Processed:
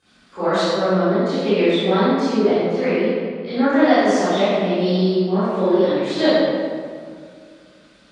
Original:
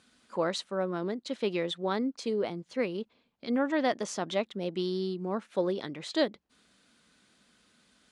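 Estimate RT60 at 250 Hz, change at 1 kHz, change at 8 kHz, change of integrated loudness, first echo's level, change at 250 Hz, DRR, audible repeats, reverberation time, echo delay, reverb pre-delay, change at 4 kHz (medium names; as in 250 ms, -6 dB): 2.6 s, +14.0 dB, +6.5 dB, +13.5 dB, no echo, +14.5 dB, -18.0 dB, no echo, 2.1 s, no echo, 23 ms, +11.5 dB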